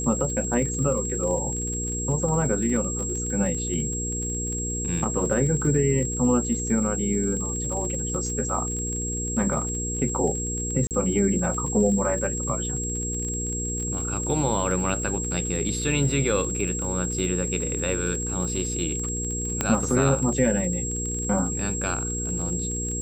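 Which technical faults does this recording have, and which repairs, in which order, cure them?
surface crackle 36 per second −31 dBFS
mains hum 60 Hz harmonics 8 −31 dBFS
whistle 7,600 Hz −29 dBFS
0:10.87–0:10.91: drop-out 38 ms
0:19.61: click −8 dBFS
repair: click removal
hum removal 60 Hz, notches 8
notch filter 7,600 Hz, Q 30
repair the gap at 0:10.87, 38 ms

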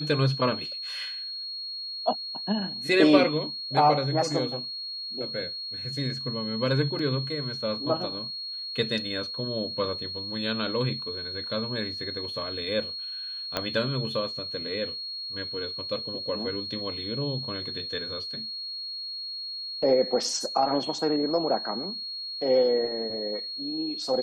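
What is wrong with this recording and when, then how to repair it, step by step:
whistle 4,300 Hz −33 dBFS
0:06.99: drop-out 2.6 ms
0:13.57: click −12 dBFS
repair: click removal
notch filter 4,300 Hz, Q 30
repair the gap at 0:06.99, 2.6 ms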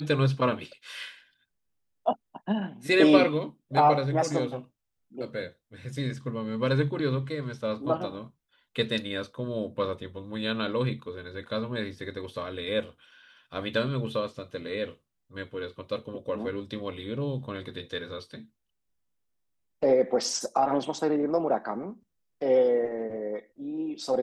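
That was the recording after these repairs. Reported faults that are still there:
0:13.57: click

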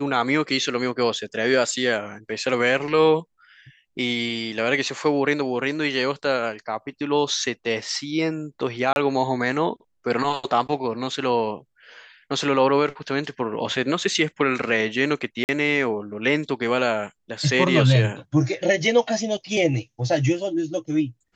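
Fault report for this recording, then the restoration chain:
0:08.93–0:08.96: drop-out 31 ms
0:15.44–0:15.49: drop-out 49 ms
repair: repair the gap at 0:08.93, 31 ms
repair the gap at 0:15.44, 49 ms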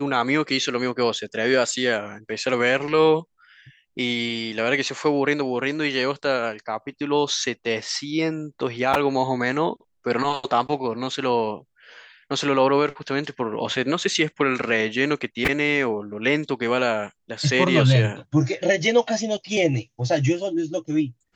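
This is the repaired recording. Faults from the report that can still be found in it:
none of them is left

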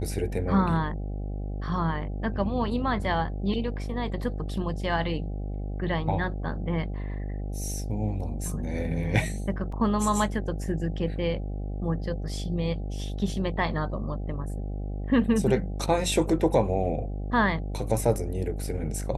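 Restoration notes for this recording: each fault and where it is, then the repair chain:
mains buzz 50 Hz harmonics 16 −32 dBFS
0:09.72: drop-out 4.2 ms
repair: hum removal 50 Hz, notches 16
repair the gap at 0:09.72, 4.2 ms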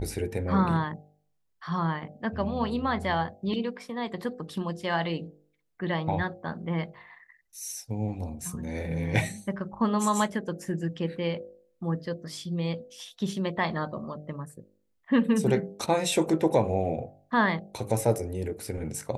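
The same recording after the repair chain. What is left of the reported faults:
none of them is left

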